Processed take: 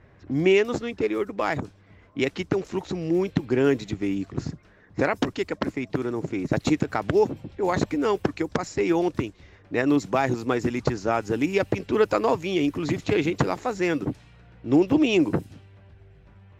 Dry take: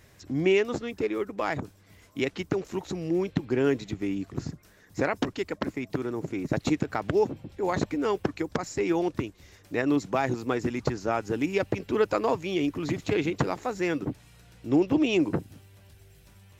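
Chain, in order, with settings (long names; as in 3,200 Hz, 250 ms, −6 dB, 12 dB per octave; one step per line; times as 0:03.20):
low-pass that shuts in the quiet parts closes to 1,600 Hz, open at −25 dBFS
level +3.5 dB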